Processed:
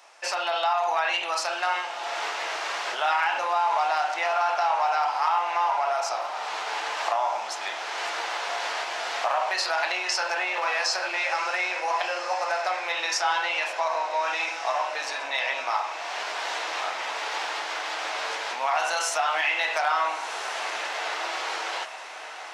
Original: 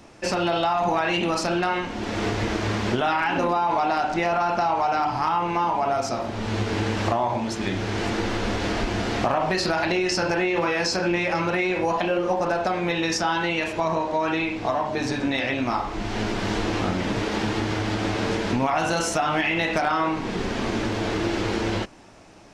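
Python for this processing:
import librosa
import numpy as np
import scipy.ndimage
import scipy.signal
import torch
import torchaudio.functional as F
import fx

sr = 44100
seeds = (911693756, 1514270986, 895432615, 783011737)

y = scipy.signal.sosfilt(scipy.signal.butter(4, 680.0, 'highpass', fs=sr, output='sos'), x)
y = fx.echo_diffused(y, sr, ms=1411, feedback_pct=52, wet_db=-11.0)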